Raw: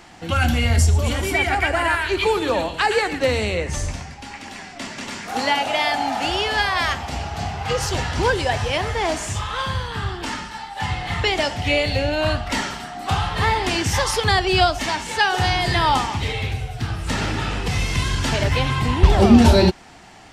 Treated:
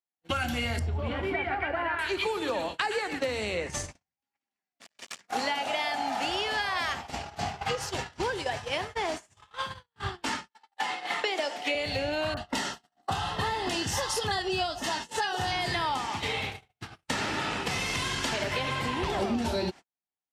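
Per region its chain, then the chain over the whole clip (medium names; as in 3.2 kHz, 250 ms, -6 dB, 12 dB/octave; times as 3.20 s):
0.79–1.99 s: distance through air 430 m + doubling 23 ms -12 dB
4.81–5.21 s: treble shelf 2.3 kHz +8.5 dB + comb 1.7 ms, depth 62% + transformer saturation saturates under 3.8 kHz
7.75–10.00 s: feedback comb 130 Hz, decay 0.52 s, harmonics odd, mix 40% + delay 123 ms -20.5 dB
10.51–11.75 s: high-pass 270 Hz 24 dB/octave + dynamic bell 550 Hz, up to +4 dB, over -34 dBFS, Q 2.2
12.34–15.52 s: Butterworth band-stop 2.3 kHz, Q 6.9 + upward compressor, threshold -30 dBFS + bands offset in time lows, highs 30 ms, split 1.5 kHz
16.07–19.35 s: bass shelf 120 Hz -8.5 dB + feedback echo behind a low-pass 111 ms, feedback 69%, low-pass 3.5 kHz, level -9 dB
whole clip: high-pass 210 Hz 6 dB/octave; gate -28 dBFS, range -58 dB; compression 6:1, threshold -29 dBFS; trim +1.5 dB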